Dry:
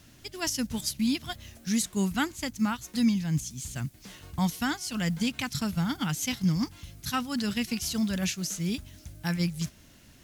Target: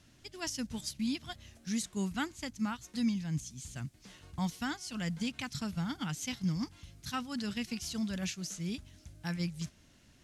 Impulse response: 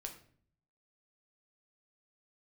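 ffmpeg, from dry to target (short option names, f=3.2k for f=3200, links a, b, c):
-af "lowpass=9.3k,volume=-7dB"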